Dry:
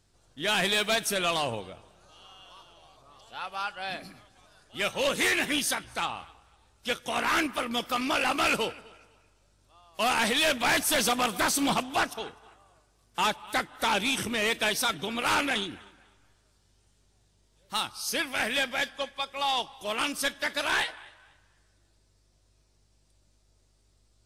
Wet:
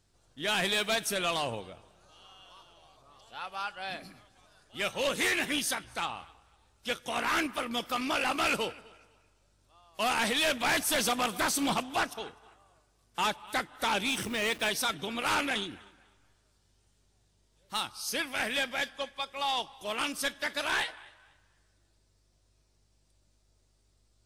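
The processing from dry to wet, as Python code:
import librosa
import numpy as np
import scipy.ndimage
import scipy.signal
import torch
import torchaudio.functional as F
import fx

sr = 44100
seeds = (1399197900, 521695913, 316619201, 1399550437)

y = fx.delta_hold(x, sr, step_db=-41.0, at=(14.08, 14.7))
y = F.gain(torch.from_numpy(y), -3.0).numpy()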